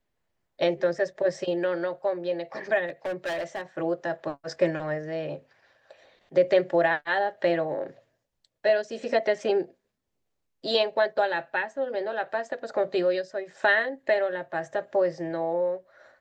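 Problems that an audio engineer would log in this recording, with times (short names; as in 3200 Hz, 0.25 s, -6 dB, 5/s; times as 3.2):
2.87–3.62 clipped -27 dBFS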